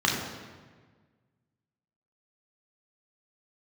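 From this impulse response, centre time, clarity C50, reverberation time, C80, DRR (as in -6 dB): 60 ms, 3.0 dB, 1.5 s, 5.0 dB, -2.5 dB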